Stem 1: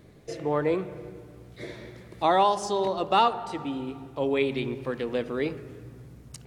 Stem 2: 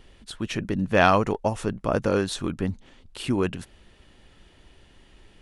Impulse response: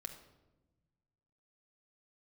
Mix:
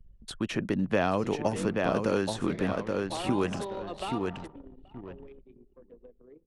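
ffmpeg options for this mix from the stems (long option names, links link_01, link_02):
-filter_complex "[0:a]acompressor=threshold=-34dB:ratio=3,adelay=900,volume=-2.5dB,afade=type=out:start_time=4.2:duration=0.43:silence=0.281838,asplit=2[link_01][link_02];[link_02]volume=-18dB[link_03];[1:a]volume=1dB,asplit=2[link_04][link_05];[link_05]volume=-8dB[link_06];[link_03][link_06]amix=inputs=2:normalize=0,aecho=0:1:827|1654|2481|3308:1|0.24|0.0576|0.0138[link_07];[link_01][link_04][link_07]amix=inputs=3:normalize=0,anlmdn=0.158,acrossover=split=140|630|1800[link_08][link_09][link_10][link_11];[link_08]acompressor=threshold=-45dB:ratio=4[link_12];[link_09]acompressor=threshold=-25dB:ratio=4[link_13];[link_10]acompressor=threshold=-35dB:ratio=4[link_14];[link_11]acompressor=threshold=-39dB:ratio=4[link_15];[link_12][link_13][link_14][link_15]amix=inputs=4:normalize=0"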